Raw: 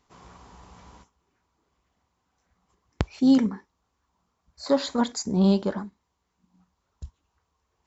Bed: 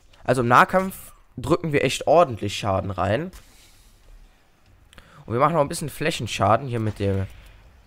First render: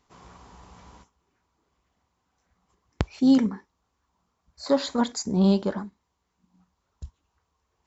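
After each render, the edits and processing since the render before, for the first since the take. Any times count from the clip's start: no audible change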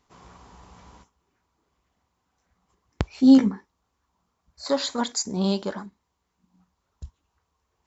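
3.12–3.52 s: doubling 15 ms -2.5 dB; 4.65–5.86 s: tilt EQ +2 dB/octave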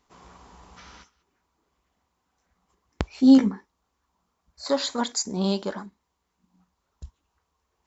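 peaking EQ 110 Hz -6 dB 0.87 oct; 0.77–1.23 s: time-frequency box 1.2–6.4 kHz +10 dB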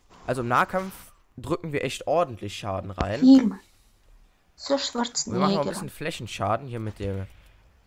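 add bed -7 dB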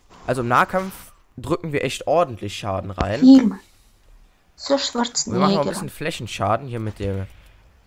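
trim +5 dB; peak limiter -2 dBFS, peak gain reduction 1.5 dB

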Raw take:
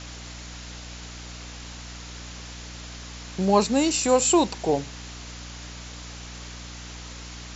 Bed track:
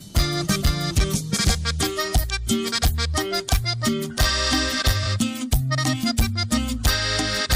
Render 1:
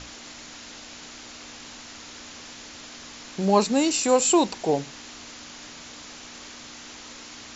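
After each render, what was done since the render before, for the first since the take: hum notches 60/120/180 Hz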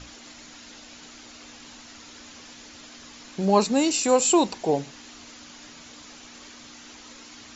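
noise reduction 6 dB, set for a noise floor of -43 dBFS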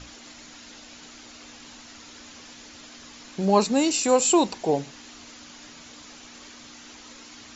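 no audible change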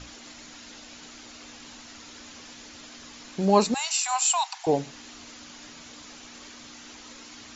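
3.74–4.67 s: steep high-pass 710 Hz 96 dB/octave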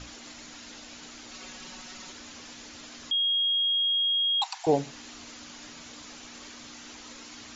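1.31–2.12 s: comb 5.4 ms, depth 80%; 3.11–4.42 s: bleep 3.27 kHz -22.5 dBFS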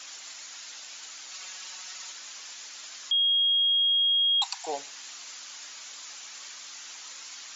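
high-pass 930 Hz 12 dB/octave; treble shelf 6.5 kHz +11.5 dB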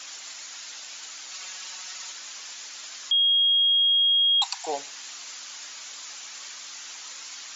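trim +3 dB

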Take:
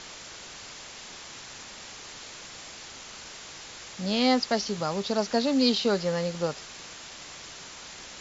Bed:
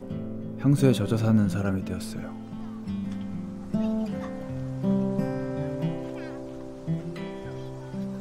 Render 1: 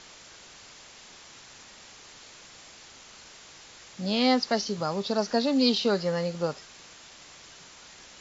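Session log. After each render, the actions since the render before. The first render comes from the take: noise print and reduce 6 dB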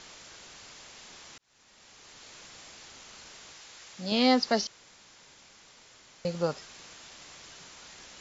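1.38–2.38 s: fade in; 3.53–4.12 s: bass shelf 490 Hz -7 dB; 4.67–6.25 s: room tone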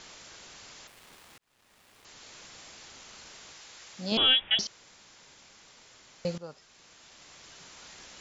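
0.87–2.05 s: dead-time distortion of 0.1 ms; 4.17–4.59 s: frequency inversion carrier 3.6 kHz; 6.38–7.84 s: fade in, from -17 dB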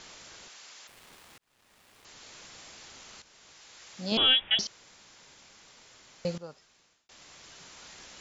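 0.48–0.89 s: high-pass 890 Hz 6 dB/octave; 3.22–3.99 s: fade in, from -12 dB; 6.40–7.09 s: fade out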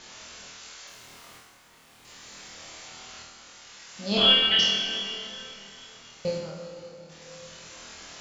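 on a send: flutter echo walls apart 4.3 m, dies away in 0.54 s; on the sum: plate-style reverb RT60 3.5 s, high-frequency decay 0.8×, DRR 2 dB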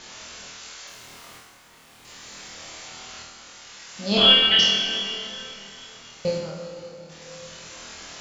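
trim +4 dB

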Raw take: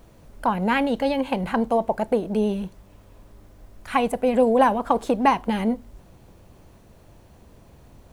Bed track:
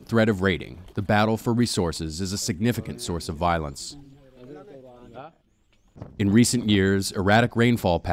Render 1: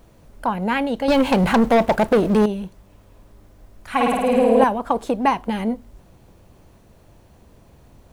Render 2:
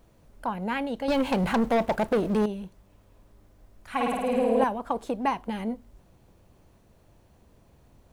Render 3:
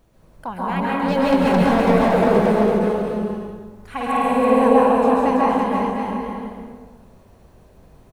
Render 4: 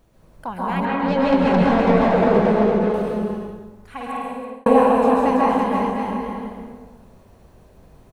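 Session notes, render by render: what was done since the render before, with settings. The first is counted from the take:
1.08–2.46 s: waveshaping leveller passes 3; 3.91–4.64 s: flutter echo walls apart 9.2 m, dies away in 1.4 s
trim -8 dB
on a send: bouncing-ball echo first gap 330 ms, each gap 0.7×, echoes 5; on the sum: plate-style reverb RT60 1.3 s, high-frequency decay 0.4×, pre-delay 120 ms, DRR -5.5 dB
0.85–2.94 s: distance through air 96 m; 3.44–4.66 s: fade out

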